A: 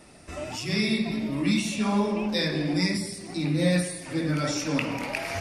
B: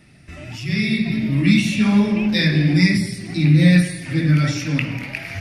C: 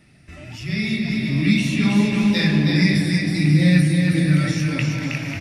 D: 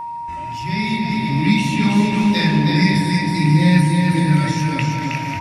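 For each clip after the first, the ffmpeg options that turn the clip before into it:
-af "equalizer=f=125:t=o:w=1:g=11,equalizer=f=500:t=o:w=1:g=-7,equalizer=f=1000:t=o:w=1:g=-9,equalizer=f=2000:t=o:w=1:g=6,equalizer=f=8000:t=o:w=1:g=-8,dynaudnorm=f=230:g=9:m=2.82"
-af "aecho=1:1:320|544|700.8|810.6|887.4:0.631|0.398|0.251|0.158|0.1,volume=0.708"
-af "aeval=exprs='val(0)+0.0447*sin(2*PI*940*n/s)':c=same,volume=1.19"

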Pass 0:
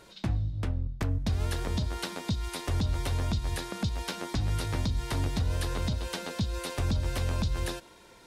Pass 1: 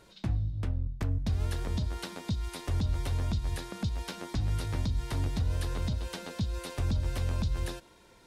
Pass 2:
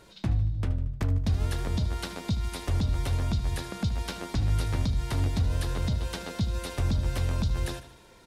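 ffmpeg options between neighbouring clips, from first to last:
-af "lowshelf=f=210:g=5,volume=0.562"
-af "aecho=1:1:76|152|228|304|380:0.2|0.106|0.056|0.0297|0.0157,volume=1.5"

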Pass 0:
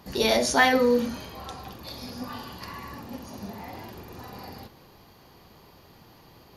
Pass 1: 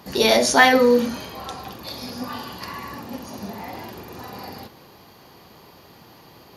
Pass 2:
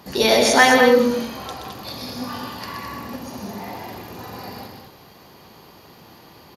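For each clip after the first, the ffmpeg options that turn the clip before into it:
-af "highpass=f=140:p=1,volume=2"
-af "aecho=1:1:125.4|212.8:0.501|0.447"

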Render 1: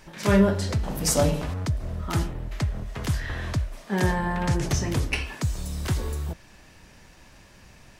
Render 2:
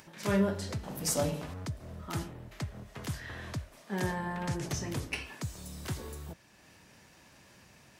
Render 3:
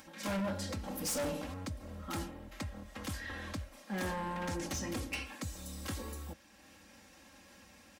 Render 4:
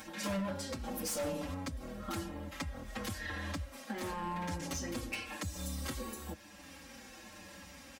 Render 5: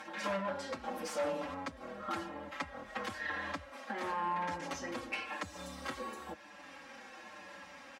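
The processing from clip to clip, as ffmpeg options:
-af "acompressor=mode=upward:threshold=0.00891:ratio=2.5,highpass=100,highshelf=f=10000:g=4.5,volume=0.376"
-af "aecho=1:1:3.7:0.96,asoftclip=type=hard:threshold=0.0316,volume=0.75"
-filter_complex "[0:a]acompressor=threshold=0.00708:ratio=6,asplit=2[s0][s1];[s1]adelay=6,afreqshift=-0.97[s2];[s0][s2]amix=inputs=2:normalize=1,volume=2.99"
-af "bandpass=f=1100:t=q:w=0.69:csg=0,volume=1.88"

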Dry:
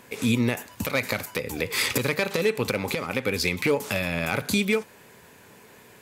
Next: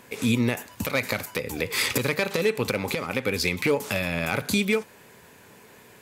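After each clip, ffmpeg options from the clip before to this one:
-af anull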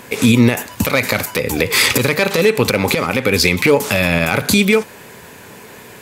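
-af "alimiter=level_in=5.01:limit=0.891:release=50:level=0:latency=1,volume=0.891"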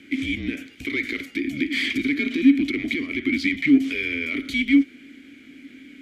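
-filter_complex "[0:a]acontrast=83,afreqshift=-160,asplit=3[s0][s1][s2];[s0]bandpass=f=270:t=q:w=8,volume=1[s3];[s1]bandpass=f=2290:t=q:w=8,volume=0.501[s4];[s2]bandpass=f=3010:t=q:w=8,volume=0.355[s5];[s3][s4][s5]amix=inputs=3:normalize=0,volume=0.708"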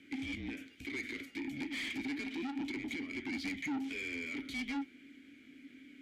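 -af "asoftclip=type=tanh:threshold=0.0708,flanger=delay=7:depth=3.7:regen=-71:speed=0.69:shape=sinusoidal,volume=0.447"

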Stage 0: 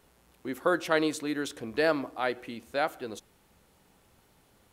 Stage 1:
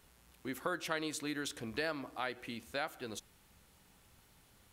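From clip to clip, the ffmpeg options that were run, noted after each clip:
-af "equalizer=f=460:w=0.49:g=-7.5,acompressor=threshold=0.0141:ratio=2.5,volume=1.12"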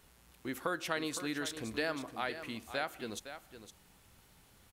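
-af "aecho=1:1:512:0.282,volume=1.19"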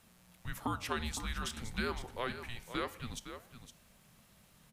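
-af "flanger=delay=9.1:depth=5.9:regen=87:speed=1.7:shape=sinusoidal,afreqshift=-240,volume=1.58"

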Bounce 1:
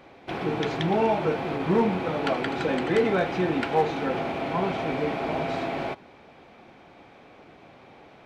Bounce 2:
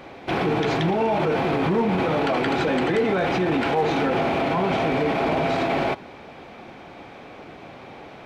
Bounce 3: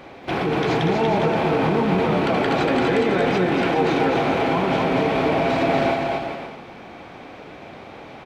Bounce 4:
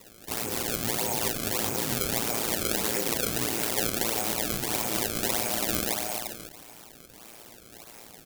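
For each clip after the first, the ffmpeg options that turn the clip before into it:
-af "alimiter=limit=0.0668:level=0:latency=1:release=16,volume=2.82"
-af "aecho=1:1:240|408|525.6|607.9|665.5:0.631|0.398|0.251|0.158|0.1"
-af "aeval=exprs='val(0)*sin(2*PI*57*n/s)':c=same,acrusher=samples=27:mix=1:aa=0.000001:lfo=1:lforange=43.2:lforate=1.6,crystalizer=i=5:c=0,volume=0.282"

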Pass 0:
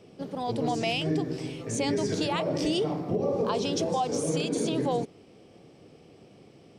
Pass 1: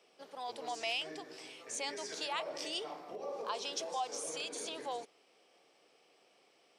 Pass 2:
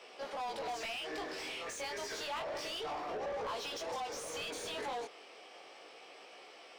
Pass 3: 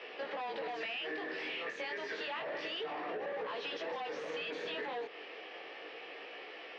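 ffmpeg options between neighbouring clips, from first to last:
-af "highpass=820,volume=0.562"
-filter_complex "[0:a]acompressor=threshold=0.00891:ratio=6,flanger=delay=16:depth=7.4:speed=0.3,asplit=2[s0][s1];[s1]highpass=f=720:p=1,volume=17.8,asoftclip=type=tanh:threshold=0.0224[s2];[s0][s2]amix=inputs=2:normalize=0,lowpass=f=2800:p=1,volume=0.501,volume=1.19"
-af "highpass=f=140:w=0.5412,highpass=f=140:w=1.3066,equalizer=f=160:t=q:w=4:g=3,equalizer=f=310:t=q:w=4:g=5,equalizer=f=460:t=q:w=4:g=6,equalizer=f=1800:t=q:w=4:g=10,equalizer=f=2700:t=q:w=4:g=5,lowpass=f=4100:w=0.5412,lowpass=f=4100:w=1.3066,acompressor=threshold=0.01:ratio=6,volume=1.41"

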